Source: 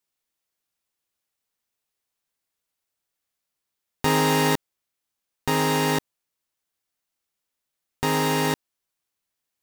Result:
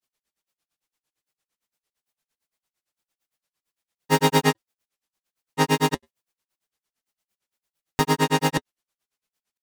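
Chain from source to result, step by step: flange 0.43 Hz, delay 4.4 ms, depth 2.4 ms, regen -48%; grains, grains 8.8/s, pitch spread up and down by 0 st; gain +9 dB

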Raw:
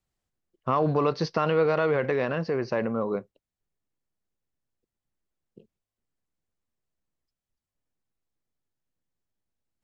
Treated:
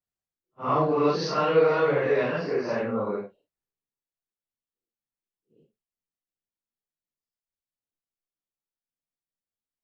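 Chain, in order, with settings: phase scrambler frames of 0.2 s; low shelf 120 Hz -10 dB; in parallel at -1.5 dB: compressor, threshold -35 dBFS, peak gain reduction 16.5 dB; on the sum: three-band expander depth 40%

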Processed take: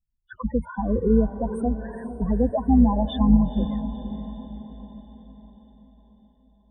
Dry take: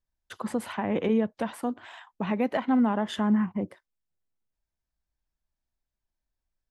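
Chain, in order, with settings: octaver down 2 oct, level -2 dB; loudest bins only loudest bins 8; diffused feedback echo 0.486 s, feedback 52%, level -11 dB; gain +5 dB

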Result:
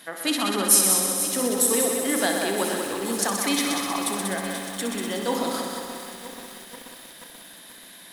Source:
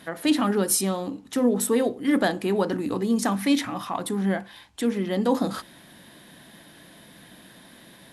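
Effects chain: HPF 490 Hz 6 dB/oct; high shelf 3900 Hz +8.5 dB; on a send: multi-head echo 63 ms, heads all three, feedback 62%, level -8.5 dB; on the sum: lo-fi delay 0.483 s, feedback 80%, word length 6-bit, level -11 dB; gain -1 dB

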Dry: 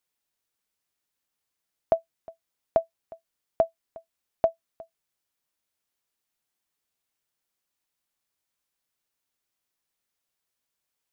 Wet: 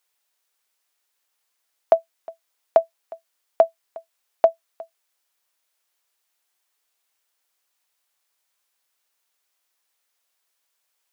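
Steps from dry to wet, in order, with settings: HPF 530 Hz 12 dB/oct; gain +8.5 dB

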